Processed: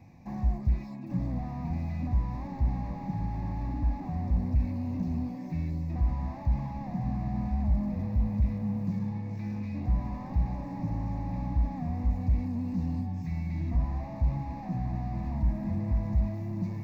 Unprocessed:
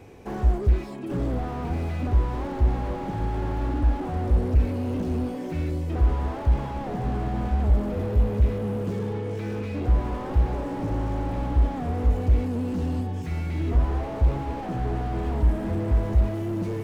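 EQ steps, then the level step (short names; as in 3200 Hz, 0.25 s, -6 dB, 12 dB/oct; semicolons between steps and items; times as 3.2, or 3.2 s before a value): bell 180 Hz +11.5 dB 1.4 oct; fixed phaser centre 2100 Hz, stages 8; -8.0 dB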